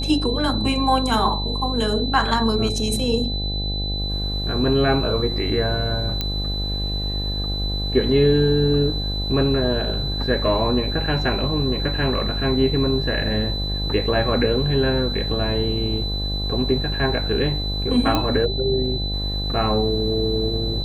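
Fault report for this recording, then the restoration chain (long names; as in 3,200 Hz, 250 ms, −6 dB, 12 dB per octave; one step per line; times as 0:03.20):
mains buzz 50 Hz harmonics 17 −26 dBFS
whistle 4,000 Hz −27 dBFS
0:06.21: click −9 dBFS
0:18.15: click −7 dBFS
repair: click removal
notch filter 4,000 Hz, Q 30
hum removal 50 Hz, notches 17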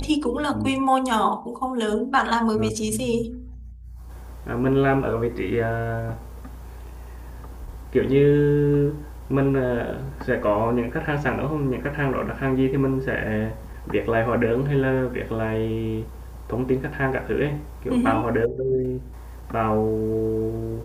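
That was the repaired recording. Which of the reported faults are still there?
none of them is left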